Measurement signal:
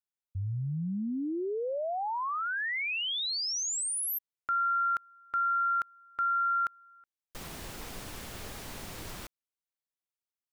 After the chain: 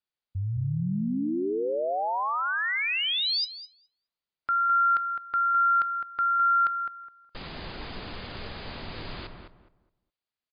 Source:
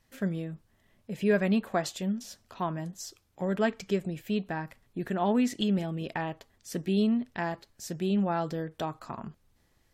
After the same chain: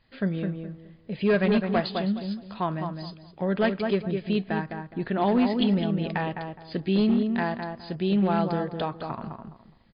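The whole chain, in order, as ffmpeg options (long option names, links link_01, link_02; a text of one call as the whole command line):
ffmpeg -i in.wav -filter_complex "[0:a]asplit=2[link_01][link_02];[link_02]adelay=208,lowpass=frequency=1500:poles=1,volume=-5dB,asplit=2[link_03][link_04];[link_04]adelay=208,lowpass=frequency=1500:poles=1,volume=0.27,asplit=2[link_05][link_06];[link_06]adelay=208,lowpass=frequency=1500:poles=1,volume=0.27,asplit=2[link_07][link_08];[link_08]adelay=208,lowpass=frequency=1500:poles=1,volume=0.27[link_09];[link_01][link_03][link_05][link_07][link_09]amix=inputs=5:normalize=0,asoftclip=type=hard:threshold=-20dB,crystalizer=i=1:c=0,volume=4dB" -ar 11025 -c:a libmp3lame -b:a 40k out.mp3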